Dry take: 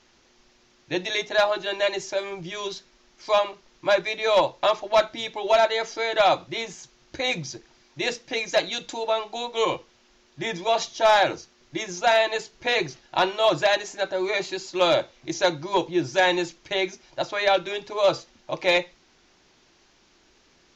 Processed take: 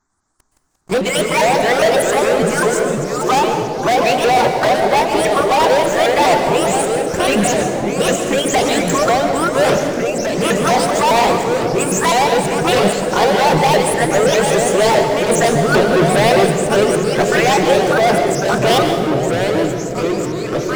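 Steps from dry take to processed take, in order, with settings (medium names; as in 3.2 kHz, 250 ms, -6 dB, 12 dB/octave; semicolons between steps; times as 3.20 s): sawtooth pitch modulation +7.5 st, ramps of 202 ms; high-order bell 3.3 kHz -10.5 dB; in parallel at -7.5 dB: hard clipper -20 dBFS, distortion -11 dB; on the sum: touch-sensitive phaser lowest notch 500 Hz, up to 1.3 kHz, full sweep at -19.5 dBFS; waveshaping leveller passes 5; on a send: bucket-brigade echo 468 ms, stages 2048, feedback 82%, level -8 dB; on the sum: plate-style reverb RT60 1.1 s, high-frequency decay 0.75×, pre-delay 110 ms, DRR 6 dB; ever faster or slower copies 92 ms, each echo -3 st, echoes 3, each echo -6 dB; trim +2 dB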